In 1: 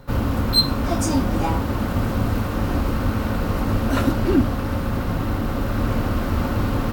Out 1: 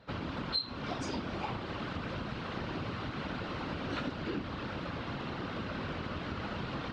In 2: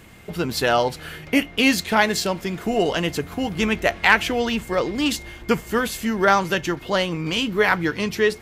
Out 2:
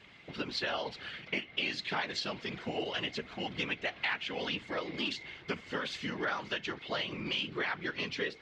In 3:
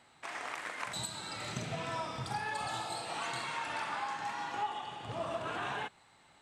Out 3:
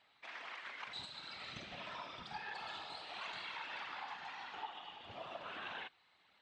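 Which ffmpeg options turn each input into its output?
ffmpeg -i in.wav -af "lowpass=frequency=3800:width=0.5412,lowpass=frequency=3800:width=1.3066,crystalizer=i=6.5:c=0,afftfilt=real='hypot(re,im)*cos(2*PI*random(0))':imag='hypot(re,im)*sin(2*PI*random(1))':win_size=512:overlap=0.75,acompressor=threshold=-24dB:ratio=6,highpass=frequency=120:poles=1,volume=-7dB" out.wav

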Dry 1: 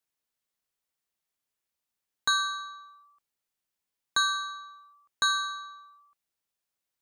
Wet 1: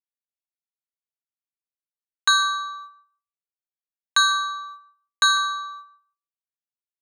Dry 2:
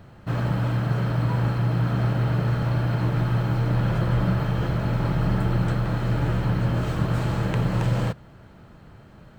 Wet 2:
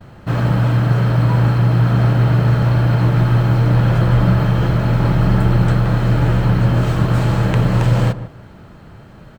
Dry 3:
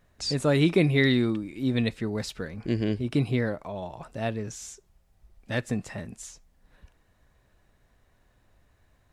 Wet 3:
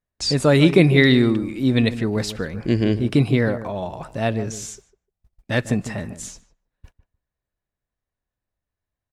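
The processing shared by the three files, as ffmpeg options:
ffmpeg -i in.wav -filter_complex "[0:a]agate=range=-30dB:threshold=-50dB:ratio=16:detection=peak,asplit=2[link_01][link_02];[link_02]adelay=150,lowpass=frequency=1200:poles=1,volume=-12dB,asplit=2[link_03][link_04];[link_04]adelay=150,lowpass=frequency=1200:poles=1,volume=0.17[link_05];[link_03][link_05]amix=inputs=2:normalize=0[link_06];[link_01][link_06]amix=inputs=2:normalize=0,volume=7.5dB" out.wav

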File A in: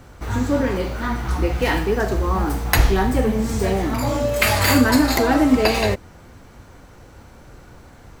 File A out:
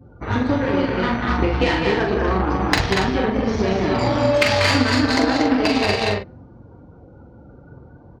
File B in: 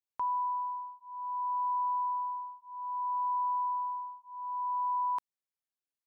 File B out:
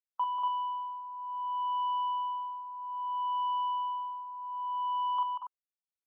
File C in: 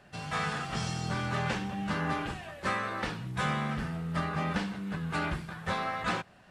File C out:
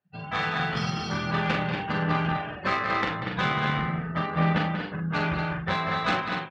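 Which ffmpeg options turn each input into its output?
ffmpeg -i in.wav -filter_complex "[0:a]lowpass=frequency=5400:width=0.5412,lowpass=frequency=5400:width=1.3066,afftdn=noise_reduction=31:noise_floor=-42,highpass=82,asplit=2[link_01][link_02];[link_02]aecho=0:1:189.5|239.1:0.447|0.562[link_03];[link_01][link_03]amix=inputs=2:normalize=0,acompressor=threshold=-22dB:ratio=8,aeval=exprs='0.299*(cos(1*acos(clip(val(0)/0.299,-1,1)))-cos(1*PI/2))+0.0211*(cos(7*acos(clip(val(0)/0.299,-1,1)))-cos(7*PI/2))':channel_layout=same,acontrast=30,asplit=2[link_04][link_05];[link_05]adelay=43,volume=-5dB[link_06];[link_04][link_06]amix=inputs=2:normalize=0,adynamicequalizer=threshold=0.00891:dfrequency=2700:dqfactor=0.7:tfrequency=2700:tqfactor=0.7:attack=5:release=100:ratio=0.375:range=2:mode=boostabove:tftype=highshelf,volume=2.5dB" out.wav

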